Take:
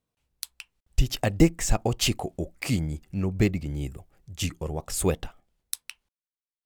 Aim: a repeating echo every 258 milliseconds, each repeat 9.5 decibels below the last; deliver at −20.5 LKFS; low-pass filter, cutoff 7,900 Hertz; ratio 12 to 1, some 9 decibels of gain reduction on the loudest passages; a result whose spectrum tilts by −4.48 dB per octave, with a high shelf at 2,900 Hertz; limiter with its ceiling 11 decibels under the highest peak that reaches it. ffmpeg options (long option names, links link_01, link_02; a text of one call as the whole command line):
ffmpeg -i in.wav -af "lowpass=7900,highshelf=frequency=2900:gain=4,acompressor=threshold=-22dB:ratio=12,alimiter=limit=-21dB:level=0:latency=1,aecho=1:1:258|516|774|1032:0.335|0.111|0.0365|0.012,volume=12.5dB" out.wav